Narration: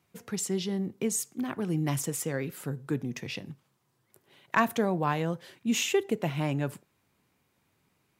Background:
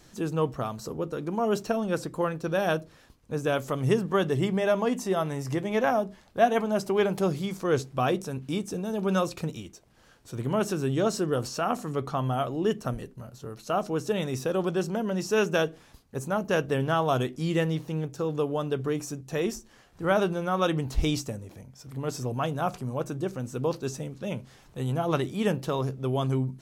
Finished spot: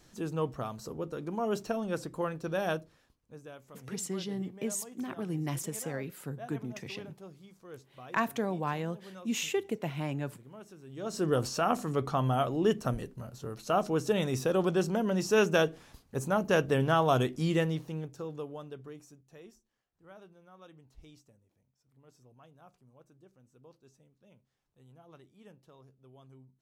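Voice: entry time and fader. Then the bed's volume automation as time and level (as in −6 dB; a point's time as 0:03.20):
3.60 s, −5.0 dB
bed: 0:02.72 −5.5 dB
0:03.58 −23 dB
0:10.86 −23 dB
0:11.26 −0.5 dB
0:17.43 −0.5 dB
0:19.85 −29 dB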